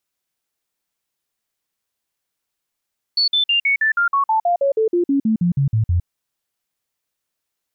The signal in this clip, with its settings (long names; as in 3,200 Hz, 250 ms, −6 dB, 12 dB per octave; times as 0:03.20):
stepped sweep 4,440 Hz down, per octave 3, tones 18, 0.11 s, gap 0.05 s −13.5 dBFS